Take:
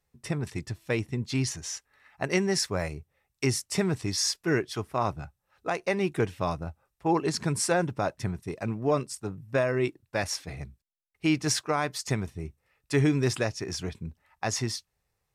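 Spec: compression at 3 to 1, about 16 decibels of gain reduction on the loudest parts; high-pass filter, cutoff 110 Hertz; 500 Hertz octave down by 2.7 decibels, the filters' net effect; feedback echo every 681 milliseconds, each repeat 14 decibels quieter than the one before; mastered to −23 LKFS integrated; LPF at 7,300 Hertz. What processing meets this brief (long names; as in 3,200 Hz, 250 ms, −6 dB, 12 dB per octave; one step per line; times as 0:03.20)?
high-pass filter 110 Hz
low-pass filter 7,300 Hz
parametric band 500 Hz −3.5 dB
downward compressor 3 to 1, threshold −44 dBFS
repeating echo 681 ms, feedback 20%, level −14 dB
level +21.5 dB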